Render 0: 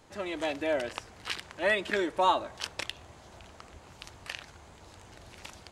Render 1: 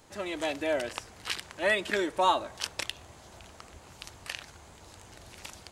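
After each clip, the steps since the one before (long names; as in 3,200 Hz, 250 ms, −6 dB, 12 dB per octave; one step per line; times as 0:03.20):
high-shelf EQ 6,500 Hz +8.5 dB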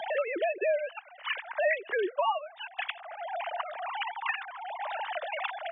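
three sine waves on the formant tracks
multiband upward and downward compressor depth 100%
level +3 dB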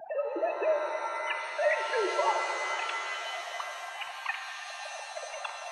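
adaptive Wiener filter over 41 samples
gate on every frequency bin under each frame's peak −20 dB strong
reverb with rising layers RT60 3.3 s, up +7 semitones, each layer −2 dB, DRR 4 dB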